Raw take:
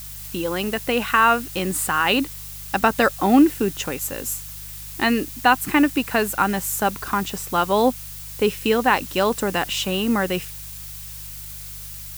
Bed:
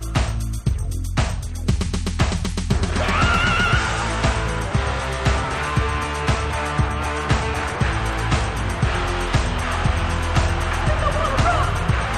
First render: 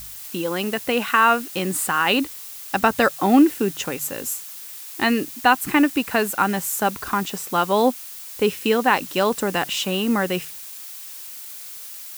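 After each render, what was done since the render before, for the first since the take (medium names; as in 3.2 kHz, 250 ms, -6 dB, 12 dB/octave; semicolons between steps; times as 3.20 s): de-hum 50 Hz, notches 3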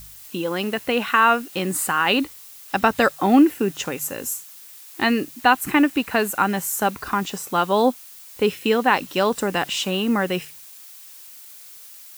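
noise print and reduce 6 dB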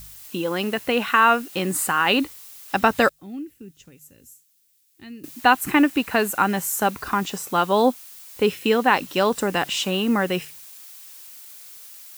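3.09–5.24 s: amplifier tone stack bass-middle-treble 10-0-1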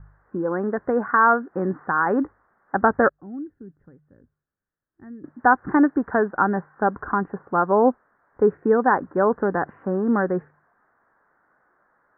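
steep low-pass 1.7 kHz 72 dB/octave; dynamic bell 400 Hz, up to +3 dB, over -37 dBFS, Q 3.2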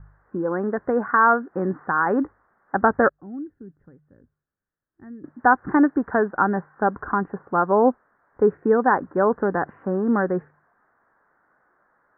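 no audible change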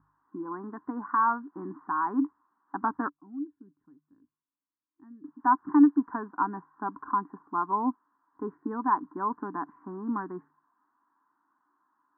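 two resonant band-passes 540 Hz, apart 1.8 oct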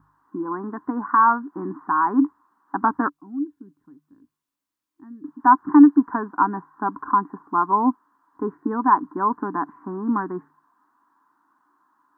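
trim +8.5 dB; peak limiter -3 dBFS, peak gain reduction 1.5 dB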